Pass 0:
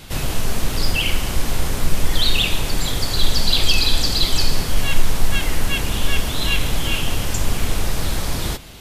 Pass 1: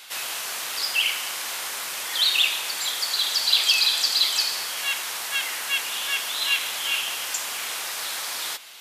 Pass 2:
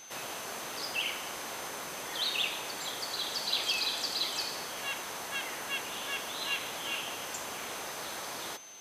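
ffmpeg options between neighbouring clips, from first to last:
ffmpeg -i in.wav -af "highpass=1100" out.wav
ffmpeg -i in.wav -af "aeval=exprs='val(0)+0.0158*sin(2*PI*6200*n/s)':channel_layout=same,tiltshelf=frequency=900:gain=10,volume=-3dB" out.wav

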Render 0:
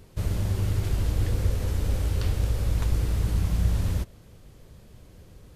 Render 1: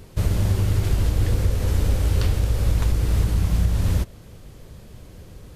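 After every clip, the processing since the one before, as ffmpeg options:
ffmpeg -i in.wav -af "alimiter=limit=-17.5dB:level=0:latency=1:release=328,volume=7dB" out.wav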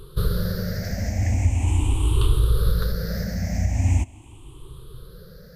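ffmpeg -i in.wav -af "afftfilt=real='re*pow(10,23/40*sin(2*PI*(0.63*log(max(b,1)*sr/1024/100)/log(2)-(0.41)*(pts-256)/sr)))':imag='im*pow(10,23/40*sin(2*PI*(0.63*log(max(b,1)*sr/1024/100)/log(2)-(0.41)*(pts-256)/sr)))':win_size=1024:overlap=0.75,volume=-5.5dB" out.wav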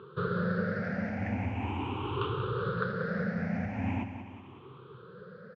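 ffmpeg -i in.wav -filter_complex "[0:a]highpass=frequency=160:width=0.5412,highpass=frequency=160:width=1.3066,equalizer=frequency=160:width_type=q:width=4:gain=-6,equalizer=frequency=310:width_type=q:width=4:gain=-9,equalizer=frequency=640:width_type=q:width=4:gain=-8,equalizer=frequency=1400:width_type=q:width=4:gain=5,equalizer=frequency=2000:width_type=q:width=4:gain=-7,lowpass=frequency=2400:width=0.5412,lowpass=frequency=2400:width=1.3066,asplit=2[link_01][link_02];[link_02]aecho=0:1:186|372|558|744|930:0.335|0.164|0.0804|0.0394|0.0193[link_03];[link_01][link_03]amix=inputs=2:normalize=0,volume=2dB" out.wav

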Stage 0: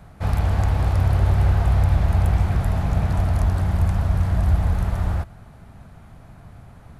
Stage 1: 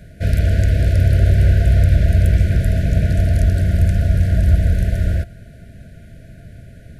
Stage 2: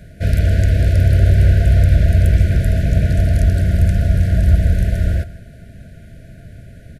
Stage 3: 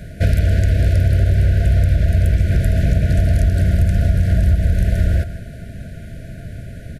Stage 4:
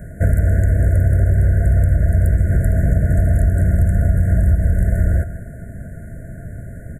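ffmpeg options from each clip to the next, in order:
ffmpeg -i in.wav -af "afftfilt=real='re*(1-between(b*sr/4096,690,1400))':imag='im*(1-between(b*sr/4096,690,1400))':win_size=4096:overlap=0.75,volume=5dB" out.wav
ffmpeg -i in.wav -af "aecho=1:1:159:0.119,volume=1dB" out.wav
ffmpeg -i in.wav -af "acompressor=threshold=-17dB:ratio=6,volume=6dB" out.wav
ffmpeg -i in.wav -af "asuperstop=centerf=3800:order=12:qfactor=0.73" out.wav

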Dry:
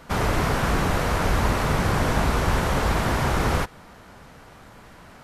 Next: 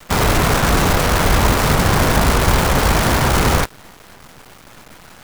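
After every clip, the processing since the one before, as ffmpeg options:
ffmpeg -i in.wav -af "acrusher=bits=5:dc=4:mix=0:aa=0.000001,volume=7dB" out.wav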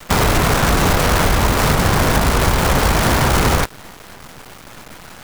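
ffmpeg -i in.wav -af "acompressor=threshold=-15dB:ratio=6,volume=4dB" out.wav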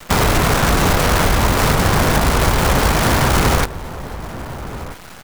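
ffmpeg -i in.wav -filter_complex "[0:a]asplit=2[link_01][link_02];[link_02]adelay=1283,volume=-13dB,highshelf=frequency=4000:gain=-28.9[link_03];[link_01][link_03]amix=inputs=2:normalize=0" out.wav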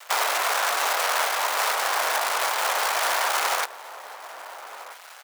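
ffmpeg -i in.wav -af "highpass=frequency=630:width=0.5412,highpass=frequency=630:width=1.3066,volume=-5dB" out.wav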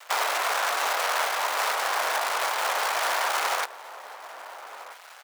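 ffmpeg -i in.wav -af "highshelf=frequency=5900:gain=-4.5,volume=-1.5dB" out.wav

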